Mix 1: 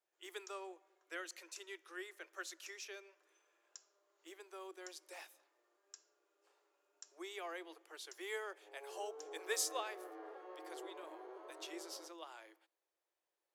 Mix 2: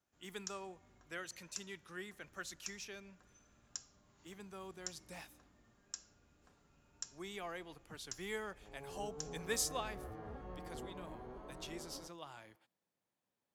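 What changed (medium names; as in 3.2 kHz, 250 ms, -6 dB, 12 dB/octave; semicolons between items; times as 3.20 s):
first sound +9.5 dB; master: remove Chebyshev high-pass 320 Hz, order 8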